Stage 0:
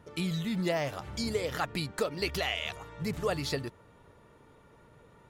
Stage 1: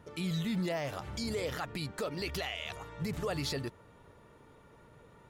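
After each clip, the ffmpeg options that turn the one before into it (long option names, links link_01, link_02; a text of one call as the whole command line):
ffmpeg -i in.wav -af "alimiter=level_in=2dB:limit=-24dB:level=0:latency=1:release=30,volume=-2dB" out.wav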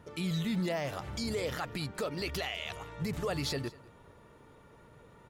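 ffmpeg -i in.wav -af "aecho=1:1:199:0.0841,volume=1dB" out.wav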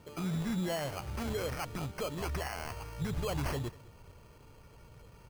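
ffmpeg -i in.wav -af "bandreject=frequency=1700:width=9,acrusher=samples=12:mix=1:aa=0.000001,asubboost=boost=3.5:cutoff=120,volume=-1dB" out.wav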